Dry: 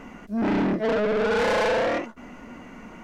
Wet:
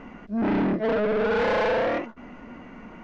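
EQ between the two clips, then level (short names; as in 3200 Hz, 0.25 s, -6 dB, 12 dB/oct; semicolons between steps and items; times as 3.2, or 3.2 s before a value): air absorption 170 m; 0.0 dB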